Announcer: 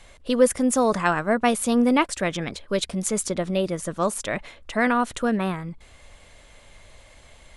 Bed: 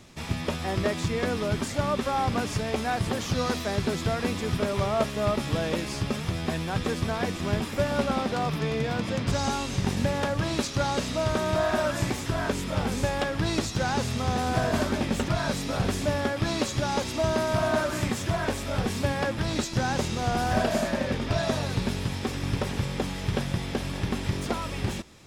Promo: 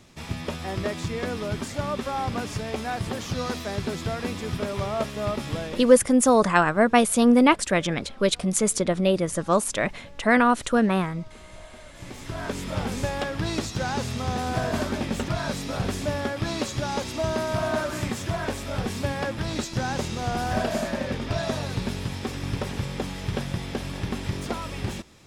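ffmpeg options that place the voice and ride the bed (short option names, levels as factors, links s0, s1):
-filter_complex "[0:a]adelay=5500,volume=1.33[s0];[1:a]volume=10,afade=t=out:st=5.5:d=0.57:silence=0.0891251,afade=t=in:st=11.93:d=0.74:silence=0.0794328[s1];[s0][s1]amix=inputs=2:normalize=0"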